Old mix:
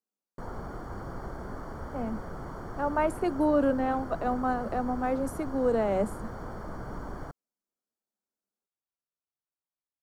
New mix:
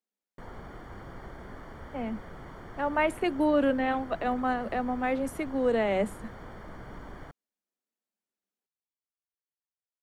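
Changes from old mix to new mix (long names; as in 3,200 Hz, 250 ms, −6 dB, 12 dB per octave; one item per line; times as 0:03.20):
background −5.5 dB
master: add flat-topped bell 2,600 Hz +10.5 dB 1.3 octaves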